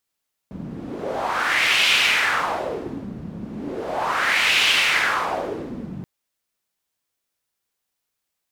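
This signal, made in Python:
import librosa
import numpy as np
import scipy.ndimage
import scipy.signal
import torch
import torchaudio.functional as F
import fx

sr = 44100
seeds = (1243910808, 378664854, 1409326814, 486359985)

y = fx.wind(sr, seeds[0], length_s=5.53, low_hz=180.0, high_hz=2800.0, q=2.8, gusts=2, swing_db=16)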